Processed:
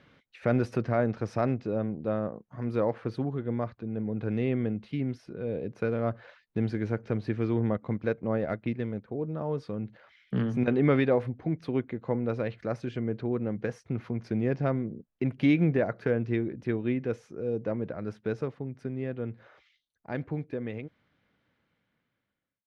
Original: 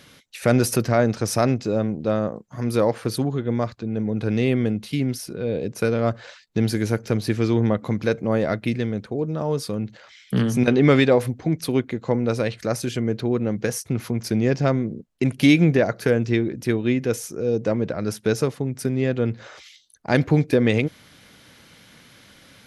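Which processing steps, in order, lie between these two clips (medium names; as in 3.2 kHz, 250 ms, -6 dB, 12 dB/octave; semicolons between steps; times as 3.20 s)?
fade out at the end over 5.79 s; low-pass 2.2 kHz 12 dB/octave; 7.75–9.08 s: transient shaper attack +1 dB, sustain -7 dB; trim -7.5 dB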